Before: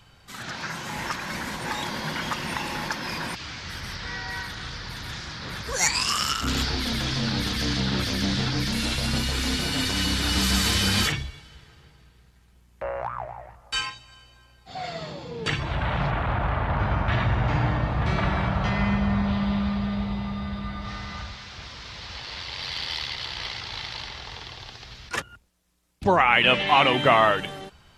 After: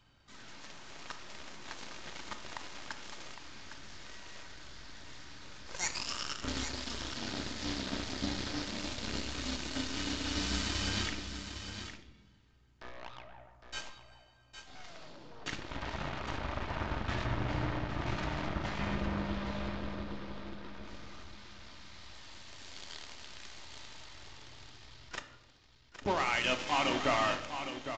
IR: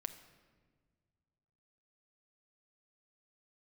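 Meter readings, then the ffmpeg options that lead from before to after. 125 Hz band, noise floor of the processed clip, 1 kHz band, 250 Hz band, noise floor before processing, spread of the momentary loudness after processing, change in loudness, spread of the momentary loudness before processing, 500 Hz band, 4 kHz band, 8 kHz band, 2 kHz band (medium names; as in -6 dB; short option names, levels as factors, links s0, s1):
-14.0 dB, -62 dBFS, -12.5 dB, -11.5 dB, -56 dBFS, 19 LU, -11.5 dB, 16 LU, -11.0 dB, -12.5 dB, -11.5 dB, -12.0 dB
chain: -filter_complex "[0:a]equalizer=f=280:t=o:w=0.22:g=7,asplit=2[s0][s1];[s1]acompressor=threshold=0.0178:ratio=6,volume=0.841[s2];[s0][s2]amix=inputs=2:normalize=0,asoftclip=type=tanh:threshold=0.133,aeval=exprs='0.133*(cos(1*acos(clip(val(0)/0.133,-1,1)))-cos(1*PI/2))+0.0596*(cos(3*acos(clip(val(0)/0.133,-1,1)))-cos(3*PI/2))+0.00422*(cos(8*acos(clip(val(0)/0.133,-1,1)))-cos(8*PI/2))':c=same,aecho=1:1:809:0.355[s3];[1:a]atrim=start_sample=2205,asetrate=83790,aresample=44100[s4];[s3][s4]afir=irnorm=-1:irlink=0,aresample=16000,aresample=44100"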